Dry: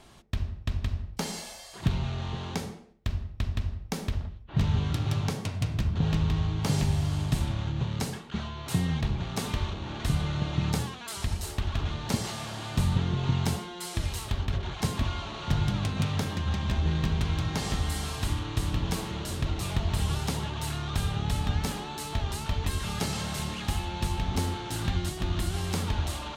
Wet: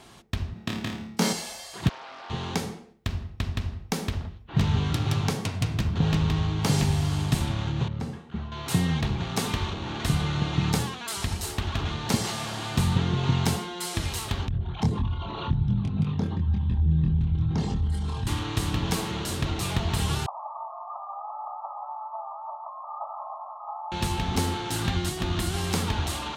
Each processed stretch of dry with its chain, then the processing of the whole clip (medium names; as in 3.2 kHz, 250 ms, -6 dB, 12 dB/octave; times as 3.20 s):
0.53–1.33 s: resonant high-pass 190 Hz, resonance Q 1.8 + doubling 18 ms -8 dB + flutter echo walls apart 4.7 m, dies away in 0.45 s
1.89–2.30 s: high-pass 590 Hz 24 dB/octave + tape spacing loss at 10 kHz 27 dB + loudspeaker Doppler distortion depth 0.4 ms
7.88–8.52 s: low-pass 1.5 kHz 6 dB/octave + bass shelf 190 Hz +9 dB + feedback comb 78 Hz, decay 0.61 s, mix 70%
14.48–18.27 s: resonances exaggerated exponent 2 + doubling 25 ms -3.5 dB
20.26–23.92 s: brick-wall FIR band-pass 570–1300 Hz + delay 175 ms -8.5 dB
whole clip: high-pass 110 Hz 6 dB/octave; band-stop 600 Hz, Q 12; trim +5 dB